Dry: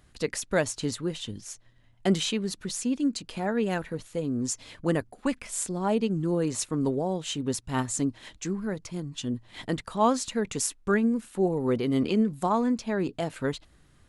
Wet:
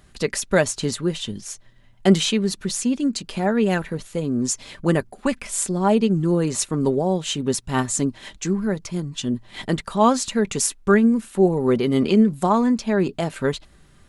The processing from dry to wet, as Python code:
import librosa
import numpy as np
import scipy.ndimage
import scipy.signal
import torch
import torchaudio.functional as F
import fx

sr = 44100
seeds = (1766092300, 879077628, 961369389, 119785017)

y = x + 0.31 * np.pad(x, (int(5.1 * sr / 1000.0), 0))[:len(x)]
y = y * librosa.db_to_amplitude(6.5)